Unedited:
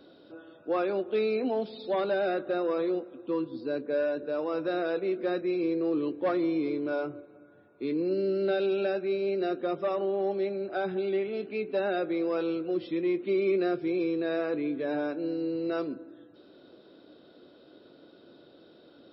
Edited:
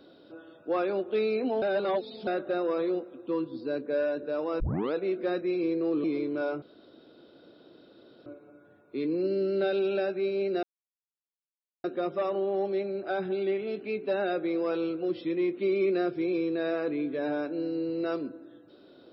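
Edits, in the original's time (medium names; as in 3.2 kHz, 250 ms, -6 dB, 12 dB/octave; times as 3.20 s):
1.62–2.27 s: reverse
4.60 s: tape start 0.34 s
6.04–6.55 s: delete
7.13 s: insert room tone 1.64 s
9.50 s: insert silence 1.21 s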